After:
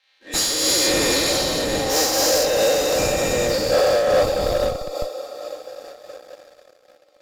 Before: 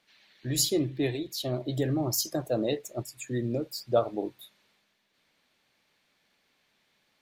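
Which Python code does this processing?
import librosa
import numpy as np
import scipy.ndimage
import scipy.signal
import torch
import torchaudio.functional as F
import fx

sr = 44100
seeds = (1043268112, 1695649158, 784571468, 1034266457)

p1 = fx.spec_dilate(x, sr, span_ms=480)
p2 = scipy.signal.sosfilt(scipy.signal.butter(4, 430.0, 'highpass', fs=sr, output='sos'), p1)
p3 = fx.high_shelf(p2, sr, hz=4000.0, db=2.5)
p4 = p3 + 0.9 * np.pad(p3, (int(3.8 * sr / 1000.0), 0))[:len(p3)]
p5 = fx.echo_diffused(p4, sr, ms=536, feedback_pct=51, wet_db=-7.0)
p6 = fx.schmitt(p5, sr, flips_db=-17.5)
p7 = p5 + (p6 * librosa.db_to_amplitude(-5.5))
p8 = fx.leveller(p7, sr, passes=2)
p9 = fx.high_shelf(p8, sr, hz=11000.0, db=-11.5)
p10 = fx.am_noise(p9, sr, seeds[0], hz=5.7, depth_pct=60)
y = p10 * librosa.db_to_amplitude(-5.0)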